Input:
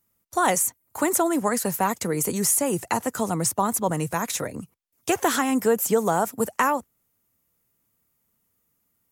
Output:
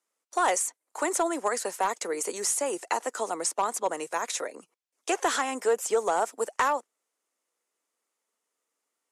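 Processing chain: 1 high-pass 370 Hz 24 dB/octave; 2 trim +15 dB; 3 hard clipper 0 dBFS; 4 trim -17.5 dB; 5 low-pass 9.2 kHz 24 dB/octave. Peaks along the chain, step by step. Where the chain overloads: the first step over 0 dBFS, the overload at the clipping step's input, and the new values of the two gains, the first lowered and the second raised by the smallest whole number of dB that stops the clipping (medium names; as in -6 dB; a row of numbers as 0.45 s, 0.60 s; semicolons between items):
-9.0 dBFS, +6.0 dBFS, 0.0 dBFS, -17.5 dBFS, -16.5 dBFS; step 2, 6.0 dB; step 2 +9 dB, step 4 -11.5 dB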